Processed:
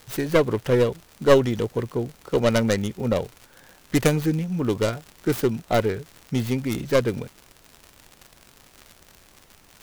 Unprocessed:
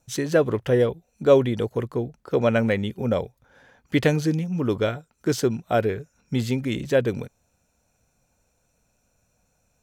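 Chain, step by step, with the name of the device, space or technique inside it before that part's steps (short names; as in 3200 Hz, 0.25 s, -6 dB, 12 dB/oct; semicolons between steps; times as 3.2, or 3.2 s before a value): record under a worn stylus (tracing distortion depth 0.45 ms; crackle 120/s -32 dBFS; pink noise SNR 31 dB)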